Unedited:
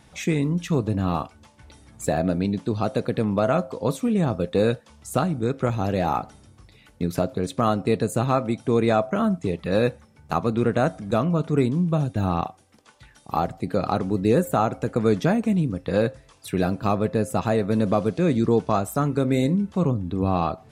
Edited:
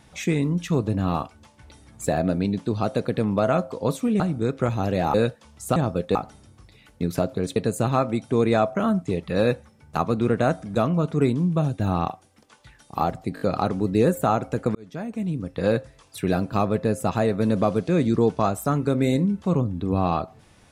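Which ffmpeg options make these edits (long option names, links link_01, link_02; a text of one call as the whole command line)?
ffmpeg -i in.wav -filter_complex "[0:a]asplit=10[link_01][link_02][link_03][link_04][link_05][link_06][link_07][link_08][link_09][link_10];[link_01]atrim=end=4.202[link_11];[link_02]atrim=start=5.208:end=6.152[link_12];[link_03]atrim=start=4.588:end=5.212[link_13];[link_04]atrim=start=4.198:end=4.592[link_14];[link_05]atrim=start=6.148:end=7.562[link_15];[link_06]atrim=start=7.918:end=13.732[link_16];[link_07]atrim=start=13.708:end=13.732[link_17];[link_08]atrim=start=13.708:end=13.732[link_18];[link_09]atrim=start=13.708:end=15.05,asetpts=PTS-STARTPTS,afade=type=out:start_time=1.338:duration=0.004:curve=hsin[link_19];[link_10]atrim=start=15.05,asetpts=PTS-STARTPTS,afade=type=in:duration=0.96[link_20];[link_11][link_12]acrossfade=duration=0.004:curve1=hsin:curve2=hsin[link_21];[link_21][link_13]acrossfade=duration=0.004:curve1=hsin:curve2=hsin[link_22];[link_22][link_14]acrossfade=duration=0.004:curve1=hsin:curve2=hsin[link_23];[link_23][link_15]acrossfade=duration=0.004:curve1=hsin:curve2=hsin[link_24];[link_24][link_16]acrossfade=duration=0.004:curve1=hsin:curve2=hsin[link_25];[link_25][link_17]acrossfade=duration=0.004:curve1=hsin:curve2=hsin[link_26];[link_26][link_18]acrossfade=duration=0.004:curve1=hsin:curve2=hsin[link_27];[link_19][link_20]concat=n=2:v=0:a=1[link_28];[link_27][link_28]acrossfade=duration=0.004:curve1=hsin:curve2=hsin" out.wav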